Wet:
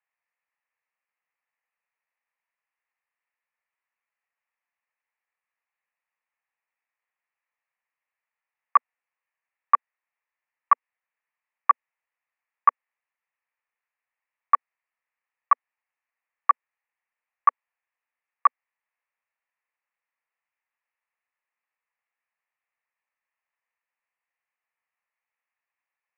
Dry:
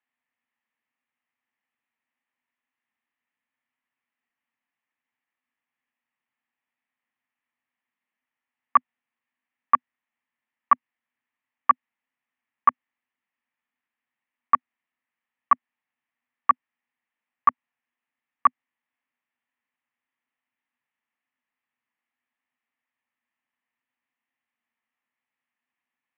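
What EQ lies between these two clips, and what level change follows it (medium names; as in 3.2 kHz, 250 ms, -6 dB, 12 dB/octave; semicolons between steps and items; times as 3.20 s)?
elliptic band-pass 480–2600 Hz; 0.0 dB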